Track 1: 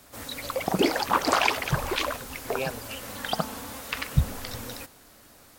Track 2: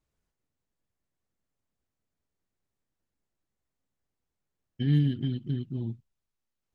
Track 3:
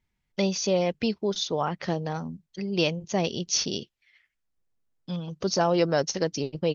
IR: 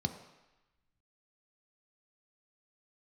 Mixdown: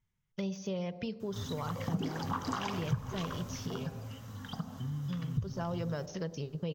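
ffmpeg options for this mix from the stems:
-filter_complex "[0:a]equalizer=f=100:t=o:w=0.67:g=10,equalizer=f=250:t=o:w=0.67:g=4,equalizer=f=10k:t=o:w=0.67:g=-8,adelay=1200,volume=-6dB,afade=t=out:st=3.43:d=0.55:silence=0.398107,asplit=2[a][b];[b]volume=-5dB[c];[1:a]acompressor=threshold=-29dB:ratio=6,volume=-10.5dB,asplit=2[d][e];[e]volume=-9dB[f];[2:a]deesser=0.9,volume=-6dB,asplit=2[g][h];[h]volume=-13dB[i];[3:a]atrim=start_sample=2205[j];[c][f][i]amix=inputs=3:normalize=0[k];[k][j]afir=irnorm=-1:irlink=0[l];[a][d][g][l]amix=inputs=4:normalize=0,acompressor=threshold=-35dB:ratio=2.5"

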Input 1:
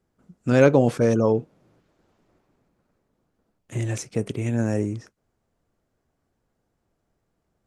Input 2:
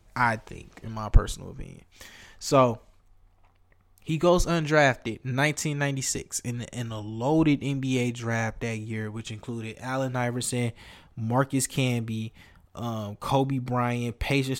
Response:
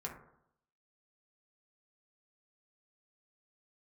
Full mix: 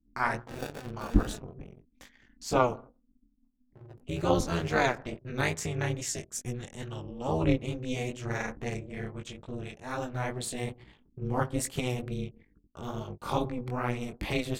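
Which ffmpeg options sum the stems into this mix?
-filter_complex "[0:a]equalizer=f=2.4k:t=o:w=1.4:g=8,acrusher=samples=34:mix=1:aa=0.000001:lfo=1:lforange=20.4:lforate=0.28,volume=-17.5dB[a];[1:a]volume=0.5dB,asplit=2[b][c];[c]volume=-13dB[d];[2:a]atrim=start_sample=2205[e];[d][e]afir=irnorm=-1:irlink=0[f];[a][b][f]amix=inputs=3:normalize=0,anlmdn=0.1,flanger=delay=17:depth=5.7:speed=2.3,tremolo=f=250:d=0.974"

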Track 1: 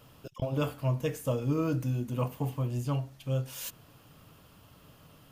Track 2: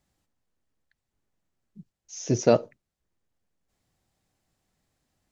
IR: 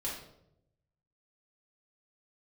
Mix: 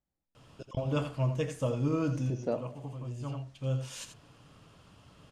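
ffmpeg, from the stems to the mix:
-filter_complex "[0:a]lowpass=f=8.7k:w=0.5412,lowpass=f=8.7k:w=1.3066,adelay=350,volume=-1dB,asplit=2[a][b];[b]volume=-9.5dB[c];[1:a]highshelf=f=2k:g=-12,volume=-13.5dB,asplit=3[d][e][f];[e]volume=-11dB[g];[f]apad=whole_len=249973[h];[a][h]sidechaincompress=threshold=-47dB:ratio=5:attack=34:release=955[i];[2:a]atrim=start_sample=2205[j];[g][j]afir=irnorm=-1:irlink=0[k];[c]aecho=0:1:84:1[l];[i][d][k][l]amix=inputs=4:normalize=0"

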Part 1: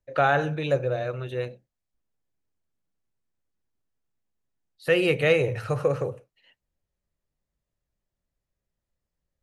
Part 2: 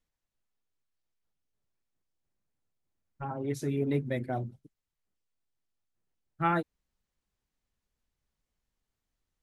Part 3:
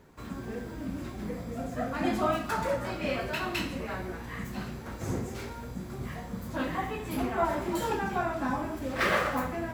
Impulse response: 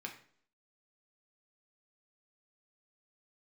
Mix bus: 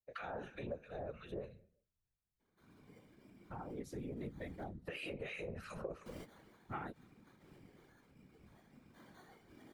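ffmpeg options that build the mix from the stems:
-filter_complex "[0:a]alimiter=limit=-18.5dB:level=0:latency=1:release=82,agate=range=-10dB:threshold=-48dB:ratio=16:detection=peak,acrossover=split=1200[a][b];[a]aeval=exprs='val(0)*(1-1/2+1/2*cos(2*PI*2.9*n/s))':c=same[c];[b]aeval=exprs='val(0)*(1-1/2-1/2*cos(2*PI*2.9*n/s))':c=same[d];[c][d]amix=inputs=2:normalize=0,volume=-2dB,asplit=3[e][f][g];[f]volume=-7dB[h];[1:a]adelay=300,volume=-3dB[i];[2:a]acrusher=samples=17:mix=1:aa=0.000001,asoftclip=type=tanh:threshold=-33dB,adelay=2400,volume=-4dB,asplit=3[j][k][l];[j]atrim=end=4.64,asetpts=PTS-STARTPTS,afade=t=out:st=4.636:d=0.004:c=hsin[m];[k]atrim=start=4.64:end=6.06,asetpts=PTS-STARTPTS,volume=0[n];[l]atrim=start=6.06,asetpts=PTS-STARTPTS,afade=t=in:d=0.004:c=hsin[o];[m][n][o]concat=n=3:v=0:a=1,asplit=2[p][q];[q]volume=-12.5dB[r];[g]apad=whole_len=535314[s];[p][s]sidechaingate=range=-33dB:threshold=-52dB:ratio=16:detection=peak[t];[3:a]atrim=start_sample=2205[u];[h][r]amix=inputs=2:normalize=0[v];[v][u]afir=irnorm=-1:irlink=0[w];[e][i][t][w]amix=inputs=4:normalize=0,afftfilt=real='hypot(re,im)*cos(2*PI*random(0))':imag='hypot(re,im)*sin(2*PI*random(1))':win_size=512:overlap=0.75,acompressor=threshold=-43dB:ratio=3"

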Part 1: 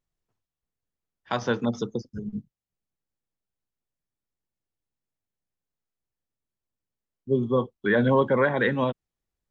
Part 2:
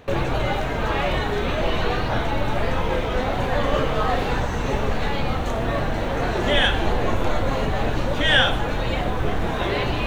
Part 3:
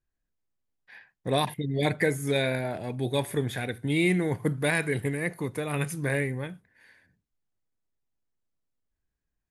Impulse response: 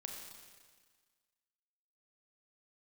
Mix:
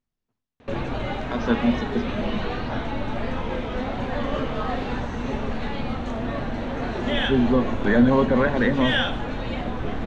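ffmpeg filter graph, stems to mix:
-filter_complex "[0:a]volume=-2dB,asplit=2[a][b];[b]volume=-9.5dB[c];[1:a]adelay=600,volume=-6dB[d];[2:a]acompressor=threshold=-36dB:ratio=6,volume=-17.5dB,asplit=2[e][f];[f]apad=whole_len=419237[g];[a][g]sidechaincompress=threshold=-57dB:ratio=8:attack=16:release=102[h];[3:a]atrim=start_sample=2205[i];[c][i]afir=irnorm=-1:irlink=0[j];[h][d][e][j]amix=inputs=4:normalize=0,lowpass=5.6k,equalizer=f=240:t=o:w=0.39:g=10"

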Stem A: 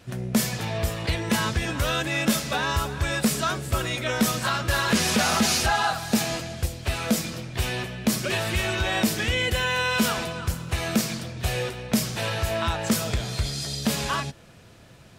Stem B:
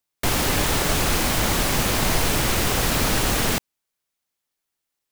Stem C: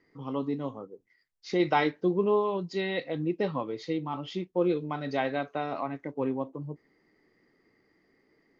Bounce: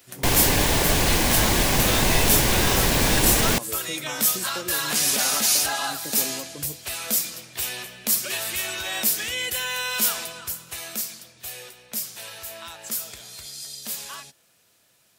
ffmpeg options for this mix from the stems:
-filter_complex "[0:a]aemphasis=mode=production:type=riaa,volume=-6dB,afade=t=out:st=10.34:d=0.76:silence=0.421697[a];[1:a]bandreject=f=1.3k:w=5.6,volume=1dB[b];[2:a]acompressor=threshold=-33dB:ratio=6,volume=-0.5dB[c];[a][b][c]amix=inputs=3:normalize=0"

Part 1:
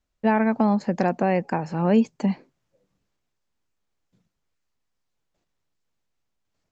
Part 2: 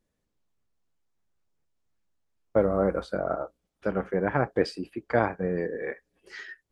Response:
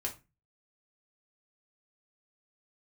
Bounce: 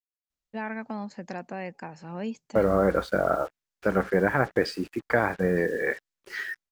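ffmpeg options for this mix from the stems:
-filter_complex "[0:a]highshelf=f=2.4k:g=10,adelay=300,volume=-15dB[a];[1:a]dynaudnorm=f=170:g=5:m=3dB,alimiter=limit=-13dB:level=0:latency=1:release=89,acrusher=bits=7:mix=0:aa=0.5,volume=1dB[b];[a][b]amix=inputs=2:normalize=0,adynamicequalizer=threshold=0.00631:dfrequency=1700:dqfactor=1.5:tfrequency=1700:tqfactor=1.5:attack=5:release=100:ratio=0.375:range=3:mode=boostabove:tftype=bell"

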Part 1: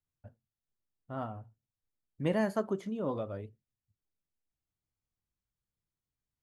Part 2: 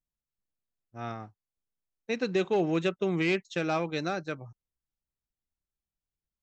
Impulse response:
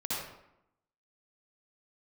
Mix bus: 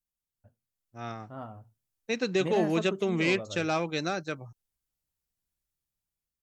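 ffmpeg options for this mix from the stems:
-filter_complex "[0:a]adelay=200,volume=-8.5dB[a];[1:a]aemphasis=mode=production:type=cd,volume=-5dB[b];[a][b]amix=inputs=2:normalize=0,dynaudnorm=f=270:g=7:m=5.5dB"

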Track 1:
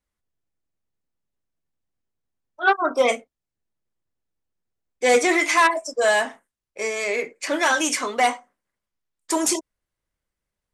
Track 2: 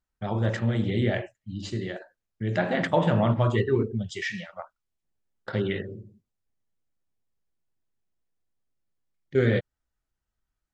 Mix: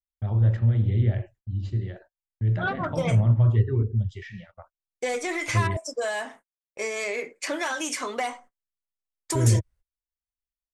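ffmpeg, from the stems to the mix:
-filter_complex "[0:a]acompressor=threshold=-24dB:ratio=8,volume=-1.5dB[a];[1:a]lowshelf=f=130:t=q:w=1.5:g=7.5,acrossover=split=460[b][c];[c]acompressor=threshold=-28dB:ratio=6[d];[b][d]amix=inputs=2:normalize=0,aemphasis=mode=reproduction:type=bsi,volume=-9dB,asplit=3[e][f][g];[e]atrim=end=5.77,asetpts=PTS-STARTPTS,afade=t=out:st=5.766:d=0.004:c=hsin[h];[f]atrim=start=5.77:end=8.32,asetpts=PTS-STARTPTS,volume=0[i];[g]atrim=start=8.32,asetpts=PTS-STARTPTS,afade=t=in:d=0.004:c=hsin[j];[h][i][j]concat=n=3:v=0:a=1[k];[a][k]amix=inputs=2:normalize=0,agate=range=-29dB:threshold=-49dB:ratio=16:detection=peak"

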